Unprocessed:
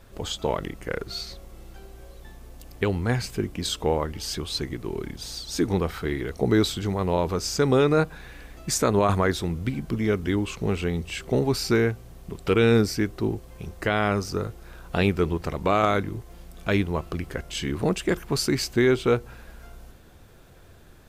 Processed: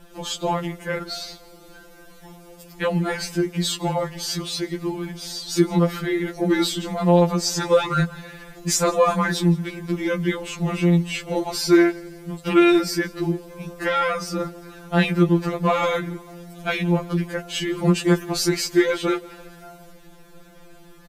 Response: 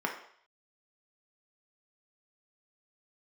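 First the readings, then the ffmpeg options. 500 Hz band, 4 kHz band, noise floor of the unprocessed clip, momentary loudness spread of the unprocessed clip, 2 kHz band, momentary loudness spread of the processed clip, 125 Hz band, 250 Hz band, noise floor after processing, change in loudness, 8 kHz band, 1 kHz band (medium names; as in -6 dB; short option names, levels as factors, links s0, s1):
+2.0 dB, +3.5 dB, -49 dBFS, 12 LU, +3.5 dB, 13 LU, +2.5 dB, +4.5 dB, -47 dBFS, +3.5 dB, +4.5 dB, +3.5 dB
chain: -filter_complex "[0:a]asplit=2[s0][s1];[s1]volume=4.73,asoftclip=hard,volume=0.211,volume=0.501[s2];[s0][s2]amix=inputs=2:normalize=0,aecho=1:1:169|338|507:0.0668|0.0354|0.0188,afftfilt=real='re*2.83*eq(mod(b,8),0)':imag='im*2.83*eq(mod(b,8),0)':win_size=2048:overlap=0.75,volume=1.41"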